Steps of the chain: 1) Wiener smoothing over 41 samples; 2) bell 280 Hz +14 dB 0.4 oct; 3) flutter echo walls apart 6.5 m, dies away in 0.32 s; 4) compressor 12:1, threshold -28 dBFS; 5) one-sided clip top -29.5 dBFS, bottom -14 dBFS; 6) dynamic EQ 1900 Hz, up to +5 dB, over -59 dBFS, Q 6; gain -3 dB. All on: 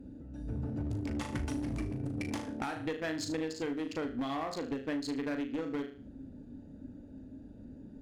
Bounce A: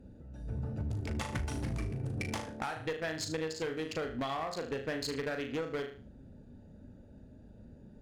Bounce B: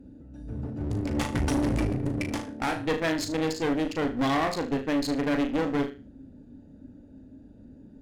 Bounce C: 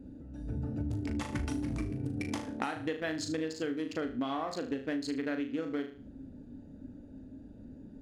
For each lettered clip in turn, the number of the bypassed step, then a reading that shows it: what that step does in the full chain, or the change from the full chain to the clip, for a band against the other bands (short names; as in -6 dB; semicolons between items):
2, 250 Hz band -7.5 dB; 4, mean gain reduction 7.0 dB; 5, crest factor change +6.0 dB